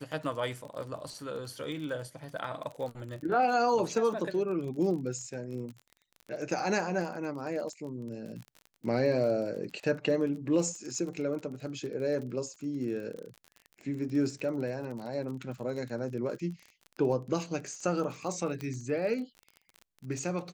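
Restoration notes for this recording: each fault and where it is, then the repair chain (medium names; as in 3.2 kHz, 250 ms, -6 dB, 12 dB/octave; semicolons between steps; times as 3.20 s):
crackle 33 per s -38 dBFS
18.61 s: pop -24 dBFS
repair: de-click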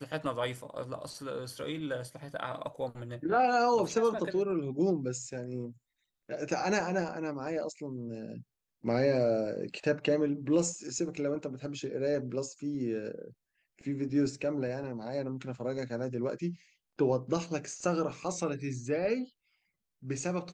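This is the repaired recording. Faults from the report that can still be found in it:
nothing left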